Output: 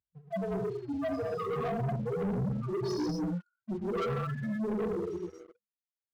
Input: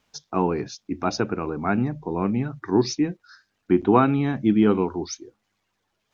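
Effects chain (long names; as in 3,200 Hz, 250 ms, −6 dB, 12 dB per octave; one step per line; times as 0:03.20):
0:02.66–0:03.77: spectral envelope exaggerated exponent 3
low-pass that shuts in the quiet parts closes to 350 Hz, open at −15 dBFS
0:04.29–0:05.05: output level in coarse steps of 14 dB
reverb reduction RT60 1.4 s
comb filter 1.6 ms, depth 61%
downward compressor 6 to 1, threshold −32 dBFS, peak gain reduction 19 dB
spectral peaks only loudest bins 1
high-pass filter 110 Hz 12 dB per octave
reverb whose tail is shaped and stops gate 290 ms flat, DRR −3.5 dB
leveller curve on the samples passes 3
level +1 dB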